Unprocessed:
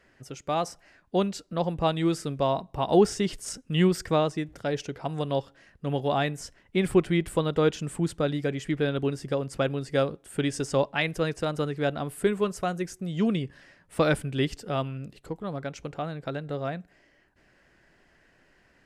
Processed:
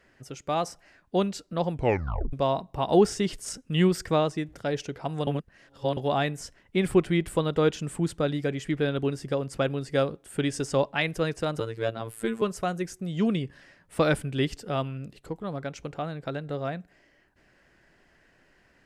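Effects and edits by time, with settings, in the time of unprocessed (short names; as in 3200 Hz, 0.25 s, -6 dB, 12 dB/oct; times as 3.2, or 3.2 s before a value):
1.71 tape stop 0.62 s
5.27–5.97 reverse
11.6–12.42 robotiser 113 Hz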